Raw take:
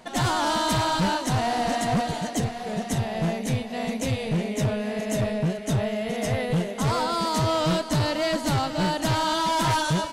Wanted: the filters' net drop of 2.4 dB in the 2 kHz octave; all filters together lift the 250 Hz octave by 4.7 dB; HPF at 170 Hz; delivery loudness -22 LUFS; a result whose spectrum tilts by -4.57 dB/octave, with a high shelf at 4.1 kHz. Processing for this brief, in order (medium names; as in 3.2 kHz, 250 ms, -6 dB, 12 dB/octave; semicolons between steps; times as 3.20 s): high-pass 170 Hz; peaking EQ 250 Hz +8 dB; peaking EQ 2 kHz -4.5 dB; treble shelf 4.1 kHz +6 dB; trim +1.5 dB